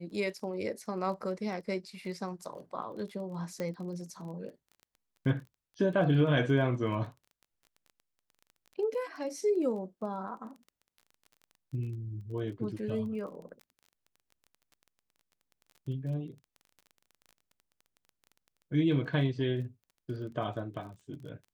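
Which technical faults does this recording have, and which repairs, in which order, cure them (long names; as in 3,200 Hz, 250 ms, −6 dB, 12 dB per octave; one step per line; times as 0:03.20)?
surface crackle 20 per second −43 dBFS
0:03.60: click −23 dBFS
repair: click removal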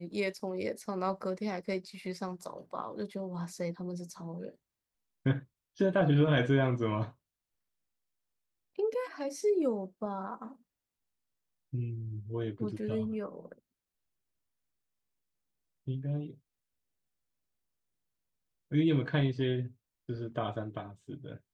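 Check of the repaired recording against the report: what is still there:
0:03.60: click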